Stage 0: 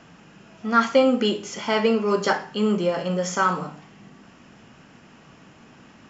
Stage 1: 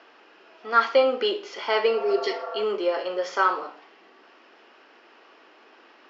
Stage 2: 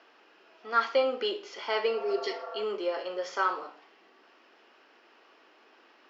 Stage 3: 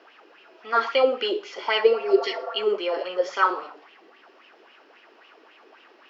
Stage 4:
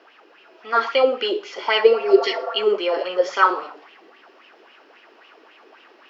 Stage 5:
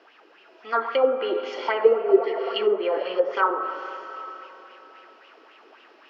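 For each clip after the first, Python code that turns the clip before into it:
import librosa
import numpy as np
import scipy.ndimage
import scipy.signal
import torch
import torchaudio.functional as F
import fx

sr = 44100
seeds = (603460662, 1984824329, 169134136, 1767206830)

y1 = fx.spec_repair(x, sr, seeds[0], start_s=1.96, length_s=0.65, low_hz=480.0, high_hz=1800.0, source='before')
y1 = scipy.signal.sosfilt(scipy.signal.ellip(3, 1.0, 40, [360.0, 4700.0], 'bandpass', fs=sr, output='sos'), y1)
y2 = fx.high_shelf(y1, sr, hz=5100.0, db=4.5)
y2 = y2 * 10.0 ** (-6.5 / 20.0)
y3 = fx.bell_lfo(y2, sr, hz=3.7, low_hz=340.0, high_hz=3000.0, db=12)
y3 = y3 * 10.0 ** (2.0 / 20.0)
y4 = fx.rider(y3, sr, range_db=10, speed_s=2.0)
y4 = y4 * 10.0 ** (4.0 / 20.0)
y5 = fx.rev_freeverb(y4, sr, rt60_s=3.6, hf_ratio=0.9, predelay_ms=45, drr_db=9.5)
y5 = fx.env_lowpass_down(y5, sr, base_hz=1200.0, full_db=-15.0)
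y5 = y5 * 10.0 ** (-3.0 / 20.0)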